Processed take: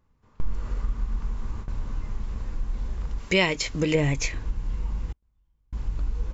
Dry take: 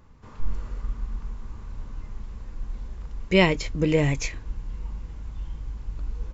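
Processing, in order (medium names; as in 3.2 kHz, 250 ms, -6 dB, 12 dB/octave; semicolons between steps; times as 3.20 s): gate with hold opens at -29 dBFS; 3.18–3.95 s: tilt EQ +2 dB/octave; compression 2:1, threshold -32 dBFS, peak gain reduction 10.5 dB; 5.12–5.73 s: inverted gate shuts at -41 dBFS, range -39 dB; trim +7 dB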